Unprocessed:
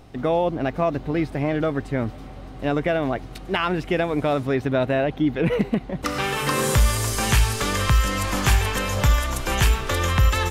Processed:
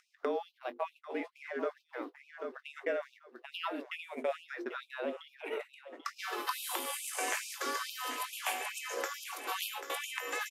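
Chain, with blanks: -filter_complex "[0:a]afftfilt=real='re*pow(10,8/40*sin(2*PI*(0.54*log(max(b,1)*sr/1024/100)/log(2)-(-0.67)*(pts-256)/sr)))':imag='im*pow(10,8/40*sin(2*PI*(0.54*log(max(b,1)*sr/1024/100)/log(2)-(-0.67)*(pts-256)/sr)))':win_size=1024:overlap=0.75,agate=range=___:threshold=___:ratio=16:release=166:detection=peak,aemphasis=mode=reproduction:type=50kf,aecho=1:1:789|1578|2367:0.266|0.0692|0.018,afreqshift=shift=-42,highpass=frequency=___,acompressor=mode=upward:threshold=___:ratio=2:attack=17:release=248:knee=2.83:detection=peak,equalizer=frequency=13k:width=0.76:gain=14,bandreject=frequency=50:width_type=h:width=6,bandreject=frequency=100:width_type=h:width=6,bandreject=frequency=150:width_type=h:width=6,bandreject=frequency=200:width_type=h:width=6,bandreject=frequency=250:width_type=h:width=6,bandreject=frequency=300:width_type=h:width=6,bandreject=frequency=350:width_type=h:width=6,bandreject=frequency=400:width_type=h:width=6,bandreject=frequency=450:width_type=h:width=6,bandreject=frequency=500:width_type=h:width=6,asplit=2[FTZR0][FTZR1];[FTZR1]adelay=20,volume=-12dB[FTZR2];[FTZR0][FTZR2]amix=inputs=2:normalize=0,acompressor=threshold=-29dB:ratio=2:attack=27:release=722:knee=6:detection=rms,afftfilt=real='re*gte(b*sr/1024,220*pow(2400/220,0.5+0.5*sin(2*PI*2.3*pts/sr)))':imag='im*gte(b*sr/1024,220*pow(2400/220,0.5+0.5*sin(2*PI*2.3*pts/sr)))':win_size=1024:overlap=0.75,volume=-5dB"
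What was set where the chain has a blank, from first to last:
-36dB, -24dB, 45, -26dB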